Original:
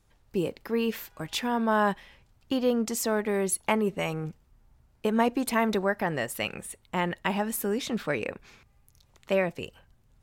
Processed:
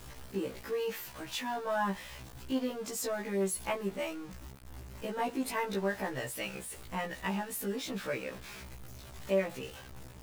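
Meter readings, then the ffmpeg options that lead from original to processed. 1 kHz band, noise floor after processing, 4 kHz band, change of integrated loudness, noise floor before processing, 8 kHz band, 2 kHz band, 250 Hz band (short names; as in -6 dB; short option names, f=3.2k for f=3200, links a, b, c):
-7.0 dB, -49 dBFS, -5.5 dB, -7.0 dB, -64 dBFS, -5.5 dB, -7.0 dB, -8.5 dB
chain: -af "aeval=exprs='val(0)+0.5*0.0211*sgn(val(0))':c=same,afftfilt=real='re*1.73*eq(mod(b,3),0)':imag='im*1.73*eq(mod(b,3),0)':win_size=2048:overlap=0.75,volume=-6dB"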